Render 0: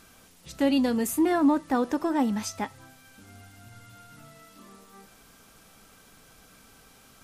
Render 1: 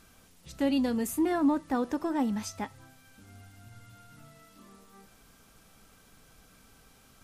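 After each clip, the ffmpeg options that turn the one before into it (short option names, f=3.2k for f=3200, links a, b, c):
-af "lowshelf=f=140:g=6.5,volume=-5dB"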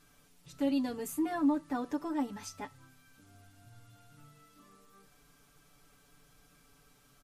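-af "aecho=1:1:6.9:0.93,volume=-8dB"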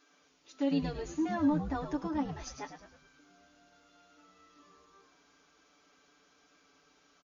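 -filter_complex "[0:a]afftfilt=real='re*between(b*sr/4096,250,7100)':imag='im*between(b*sr/4096,250,7100)':win_size=4096:overlap=0.75,asplit=6[a][b][c][d][e][f];[b]adelay=105,afreqshift=-110,volume=-8.5dB[g];[c]adelay=210,afreqshift=-220,volume=-15.1dB[h];[d]adelay=315,afreqshift=-330,volume=-21.6dB[i];[e]adelay=420,afreqshift=-440,volume=-28.2dB[j];[f]adelay=525,afreqshift=-550,volume=-34.7dB[k];[a][g][h][i][j][k]amix=inputs=6:normalize=0"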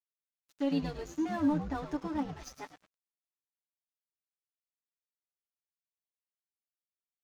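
-af "aeval=exprs='sgn(val(0))*max(abs(val(0))-0.00316,0)':c=same"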